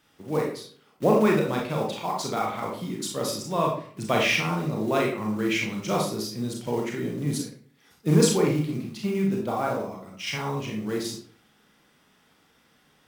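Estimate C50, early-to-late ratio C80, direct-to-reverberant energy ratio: 4.5 dB, 9.0 dB, -1.0 dB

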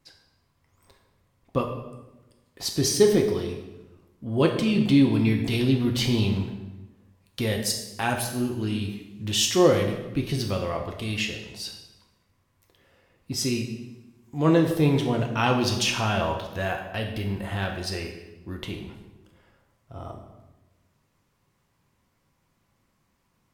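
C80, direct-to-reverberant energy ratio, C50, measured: 8.5 dB, 2.0 dB, 6.5 dB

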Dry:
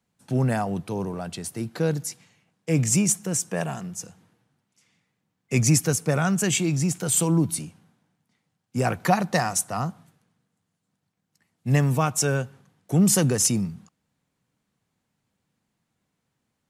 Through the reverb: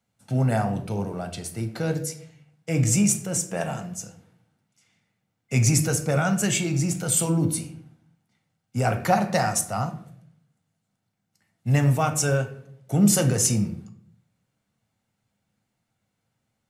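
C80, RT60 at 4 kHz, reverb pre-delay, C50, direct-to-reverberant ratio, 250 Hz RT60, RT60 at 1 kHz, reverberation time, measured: 15.0 dB, 0.40 s, 8 ms, 11.0 dB, 5.5 dB, 0.80 s, 0.55 s, 0.65 s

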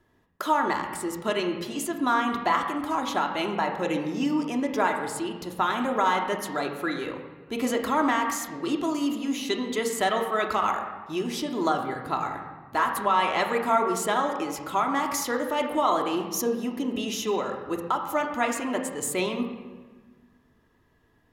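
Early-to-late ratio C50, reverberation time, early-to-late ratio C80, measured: 6.5 dB, 1.4 s, 8.0 dB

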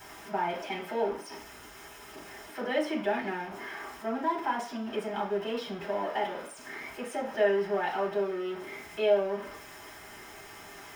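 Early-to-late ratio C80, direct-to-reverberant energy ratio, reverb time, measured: 13.0 dB, -4.5 dB, no single decay rate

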